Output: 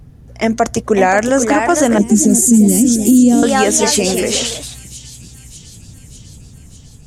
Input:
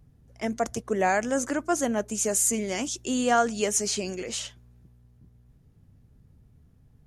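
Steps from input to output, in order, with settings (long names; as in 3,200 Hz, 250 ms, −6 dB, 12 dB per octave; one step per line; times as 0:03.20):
high-shelf EQ 7,800 Hz −4 dB
in parallel at −0.5 dB: downward compressor, threshold −32 dBFS, peak gain reduction 14.5 dB
on the sum: delay with pitch and tempo change per echo 596 ms, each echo +2 semitones, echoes 2, each echo −6 dB
0:01.98–0:03.43: drawn EQ curve 120 Hz 0 dB, 210 Hz +12 dB, 1,300 Hz −28 dB, 7,400 Hz +1 dB
on a send: delay with a high-pass on its return 598 ms, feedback 63%, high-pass 3,200 Hz, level −18 dB
on the sum: boost into a limiter +12.5 dB
level −1 dB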